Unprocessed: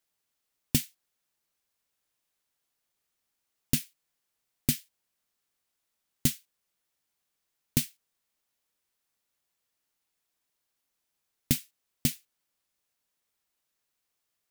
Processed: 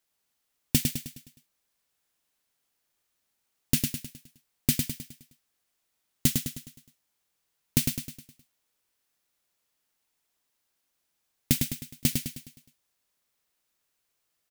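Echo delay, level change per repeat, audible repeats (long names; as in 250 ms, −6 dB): 104 ms, −6.5 dB, 5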